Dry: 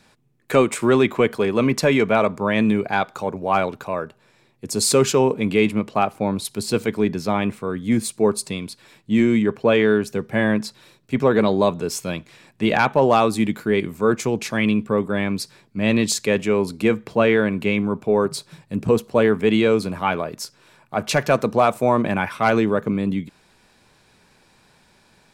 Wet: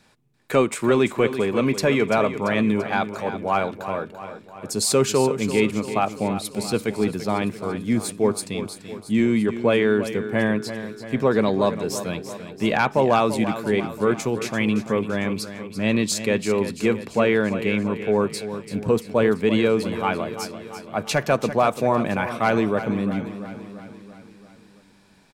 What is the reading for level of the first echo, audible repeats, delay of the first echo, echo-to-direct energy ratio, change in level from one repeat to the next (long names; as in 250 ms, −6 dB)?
−11.5 dB, 5, 339 ms, −10.0 dB, −5.0 dB